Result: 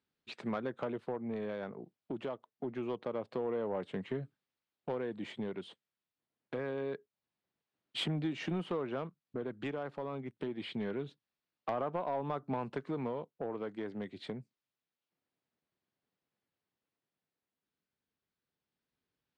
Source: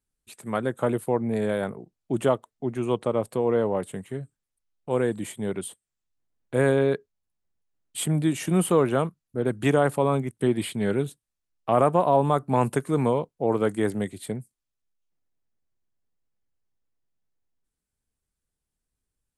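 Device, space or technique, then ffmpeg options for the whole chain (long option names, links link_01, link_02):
AM radio: -af "highpass=160,lowpass=3700,highshelf=frequency=6700:width_type=q:width=1.5:gain=-11.5,acompressor=threshold=-35dB:ratio=6,asoftclip=type=tanh:threshold=-28.5dB,tremolo=f=0.25:d=0.39,volume=3.5dB"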